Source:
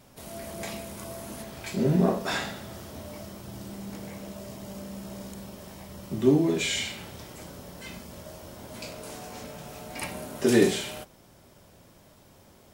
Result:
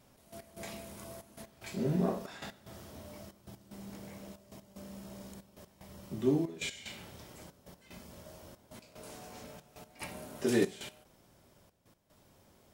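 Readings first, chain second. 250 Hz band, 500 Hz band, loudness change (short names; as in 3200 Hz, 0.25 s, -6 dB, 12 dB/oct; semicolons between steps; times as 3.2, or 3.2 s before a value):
-8.5 dB, -8.5 dB, -8.0 dB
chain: step gate "xx..x..xxxxxx" 186 bpm -12 dB; gain -8 dB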